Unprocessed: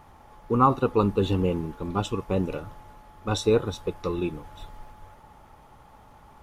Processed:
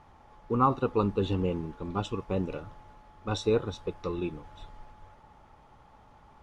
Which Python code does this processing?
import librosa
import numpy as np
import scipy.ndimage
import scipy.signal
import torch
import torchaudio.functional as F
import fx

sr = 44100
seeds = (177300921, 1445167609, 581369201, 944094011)

y = scipy.signal.sosfilt(scipy.signal.butter(2, 6400.0, 'lowpass', fs=sr, output='sos'), x)
y = y * librosa.db_to_amplitude(-4.5)